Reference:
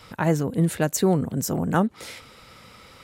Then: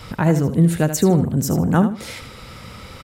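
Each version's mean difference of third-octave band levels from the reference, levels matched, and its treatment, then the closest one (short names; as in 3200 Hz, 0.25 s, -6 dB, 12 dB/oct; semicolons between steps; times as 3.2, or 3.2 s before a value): 3.5 dB: low shelf 200 Hz +9.5 dB; in parallel at +2.5 dB: compressor, threshold -34 dBFS, peak gain reduction 20.5 dB; on the sum: feedback echo 77 ms, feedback 22%, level -10 dB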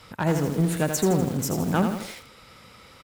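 5.0 dB: one-sided clip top -17.5 dBFS; echo 0.11 s -19.5 dB; lo-fi delay 82 ms, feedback 55%, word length 6-bit, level -5.5 dB; gain -1.5 dB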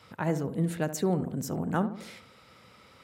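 2.5 dB: HPF 77 Hz; high shelf 4900 Hz -5 dB; darkening echo 70 ms, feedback 51%, low-pass 1200 Hz, level -10 dB; gain -7 dB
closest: third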